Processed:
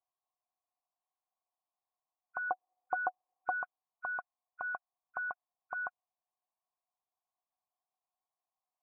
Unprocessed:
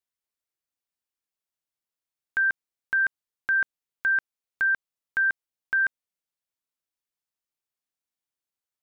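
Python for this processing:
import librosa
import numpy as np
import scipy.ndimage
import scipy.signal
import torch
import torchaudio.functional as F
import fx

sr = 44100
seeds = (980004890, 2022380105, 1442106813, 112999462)

y = fx.freq_compress(x, sr, knee_hz=1300.0, ratio=1.5)
y = fx.small_body(y, sr, hz=(340.0, 510.0, 740.0), ring_ms=50, db=15, at=(2.46, 3.59), fade=0.02)
y = fx.formant_cascade(y, sr, vowel='a')
y = y * 10.0 ** (16.0 / 20.0)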